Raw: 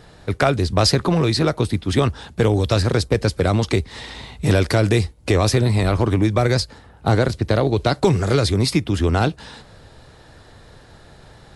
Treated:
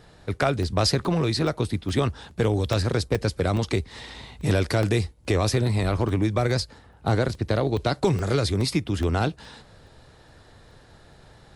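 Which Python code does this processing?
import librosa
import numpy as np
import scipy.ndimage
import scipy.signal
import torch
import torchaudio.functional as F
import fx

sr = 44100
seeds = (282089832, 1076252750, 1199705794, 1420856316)

y = fx.buffer_crackle(x, sr, first_s=0.63, period_s=0.42, block=64, kind='zero')
y = F.gain(torch.from_numpy(y), -5.5).numpy()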